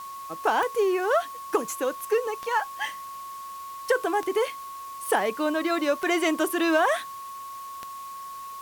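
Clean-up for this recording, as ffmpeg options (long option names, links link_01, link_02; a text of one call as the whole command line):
ffmpeg -i in.wav -af "adeclick=threshold=4,bandreject=frequency=1100:width=30,afwtdn=0.0035" out.wav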